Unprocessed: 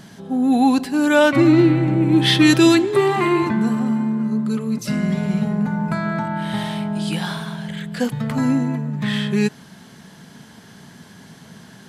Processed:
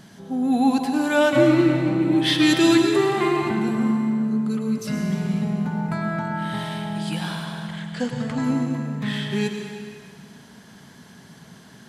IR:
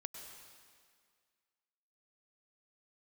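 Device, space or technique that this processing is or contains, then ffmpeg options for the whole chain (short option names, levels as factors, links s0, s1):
stairwell: -filter_complex "[0:a]asettb=1/sr,asplit=3[s0][s1][s2];[s0]atrim=end=7.454[s3];[s1]atrim=start=7.45:end=8.44,asetpts=PTS-STARTPTS,afade=t=in:d=0.004:c=qsin,afade=t=out:st=0.986:d=0.004:c=qsin,lowpass=f=8600:w=0.5412,lowpass=f=8600:w=1.3066[s4];[s2]atrim=start=8.436[s5];[s3][s4]acrossfade=d=0.004:c1=hsin:c2=qsin[s6];[s6][s5]acrossfade=d=0.004:c1=qsin:c2=hsin[s7];[1:a]atrim=start_sample=2205[s8];[s7][s8]afir=irnorm=-1:irlink=0"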